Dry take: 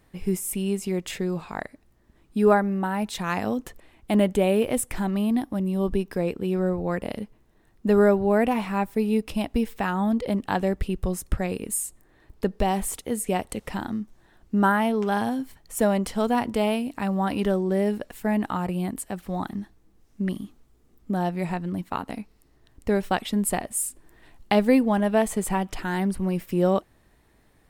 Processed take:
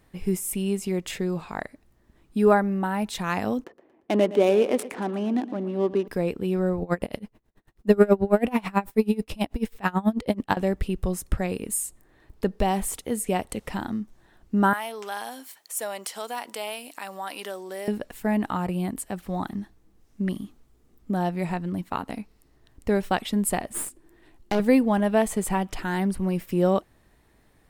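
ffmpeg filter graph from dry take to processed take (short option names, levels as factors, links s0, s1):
-filter_complex "[0:a]asettb=1/sr,asplit=3[s0][s1][s2];[s0]atrim=end=3.644[s3];[s1]atrim=start=3.64:end=6.08,asetpts=PTS-STARTPTS,afade=t=in:d=0.004:c=qsin,afade=t=out:st=2.436:d=0.004:c=qsin,adynamicsmooth=sensitivity=6:basefreq=840,highpass=f=320:t=q:w=1.5,aecho=1:1:116|232|348|464:0.158|0.0729|0.0335|0.0154,atrim=end_sample=107604[s4];[s2]atrim=start=6.076[s5];[s3][s4]acrossfade=d=0.004:c1=hsin:c2=qsin[s6];[s6][s5]acrossfade=d=0.004:c1=qsin:c2=hsin,asettb=1/sr,asplit=3[s7][s8][s9];[s7]atrim=end=6.824[s10];[s8]atrim=start=6.82:end=10.57,asetpts=PTS-STARTPTS,afade=t=in:d=0.004:c=qsin,afade=t=out:st=3.746:d=0.004:c=qsin,agate=range=0.0224:threshold=0.00141:ratio=3:release=100:detection=peak,acontrast=68,aeval=exprs='val(0)*pow(10,-27*(0.5-0.5*cos(2*PI*9.2*n/s))/20)':c=same[s11];[s9]atrim=start=10.566[s12];[s10][s11]acrossfade=d=0.004:c1=hsin:c2=qsin[s13];[s13][s12]acrossfade=d=0.004:c1=qsin:c2=hsin,asettb=1/sr,asplit=3[s14][s15][s16];[s14]atrim=end=14.734[s17];[s15]atrim=start=14.73:end=17.88,asetpts=PTS-STARTPTS,afade=t=in:d=0.004:c=qsin,afade=t=out:st=3.146:d=0.004:c=qsin,highpass=590,highshelf=f=3300:g=10.5,acompressor=threshold=0.0112:ratio=1.5:attack=3.2:release=140:knee=1:detection=peak[s18];[s16]atrim=start=17.876[s19];[s17][s18]acrossfade=d=0.004:c1=hsin:c2=qsin[s20];[s20][s19]acrossfade=d=0.004:c1=qsin:c2=hsin,asettb=1/sr,asplit=3[s21][s22][s23];[s21]atrim=end=23.734[s24];[s22]atrim=start=23.73:end=24.6,asetpts=PTS-STARTPTS,afade=t=in:d=0.004:c=qsin,afade=t=out:st=0.866:d=0.004:c=qsin,aeval=exprs='(tanh(10*val(0)+0.75)-tanh(0.75))/10':c=same,equalizer=f=340:w=2.8:g=10[s25];[s23]atrim=start=24.596[s26];[s24][s25]acrossfade=d=0.004:c1=hsin:c2=qsin[s27];[s27][s26]acrossfade=d=0.004:c1=qsin:c2=hsin"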